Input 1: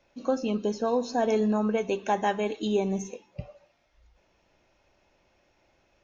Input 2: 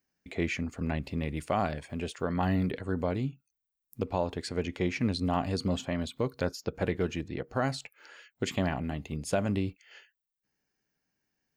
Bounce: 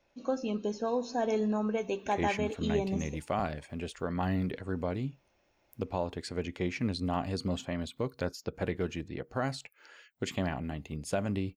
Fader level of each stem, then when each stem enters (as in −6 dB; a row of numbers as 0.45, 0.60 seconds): −5.0, −3.0 decibels; 0.00, 1.80 seconds